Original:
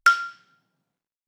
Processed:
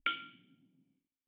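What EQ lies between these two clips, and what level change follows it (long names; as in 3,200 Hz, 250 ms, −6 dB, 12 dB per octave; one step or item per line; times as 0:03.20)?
formant resonators in series i
high-frequency loss of the air 75 metres
notch filter 440 Hz, Q 12
+13.0 dB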